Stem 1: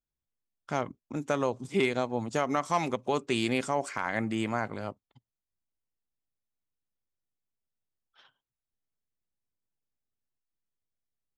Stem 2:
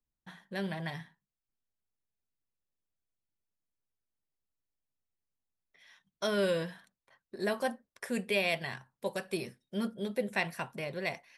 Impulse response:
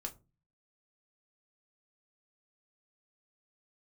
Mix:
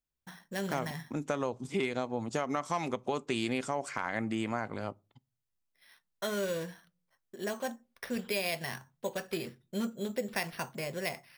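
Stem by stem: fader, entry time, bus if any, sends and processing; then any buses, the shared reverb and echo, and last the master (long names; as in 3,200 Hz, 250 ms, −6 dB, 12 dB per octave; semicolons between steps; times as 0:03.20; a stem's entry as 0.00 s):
−1.0 dB, 0.00 s, send −14 dB, no processing
−2.5 dB, 0.00 s, send −8 dB, downward expander −57 dBFS; speech leveller 2 s; decimation without filtering 6×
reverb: on, pre-delay 4 ms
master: downward compressor 2.5 to 1, threshold −30 dBFS, peak gain reduction 6.5 dB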